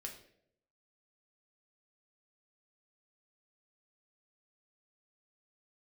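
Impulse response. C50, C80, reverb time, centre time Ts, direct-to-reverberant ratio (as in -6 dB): 8.5 dB, 11.5 dB, 0.70 s, 21 ms, 1.0 dB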